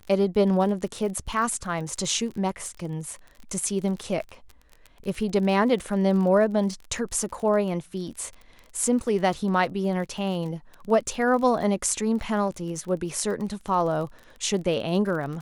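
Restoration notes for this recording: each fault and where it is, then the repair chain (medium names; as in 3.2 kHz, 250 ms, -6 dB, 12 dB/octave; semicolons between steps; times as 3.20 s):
crackle 29 per s -33 dBFS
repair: de-click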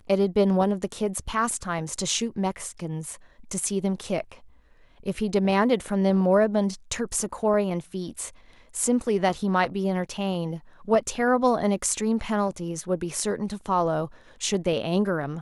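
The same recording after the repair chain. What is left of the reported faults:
nothing left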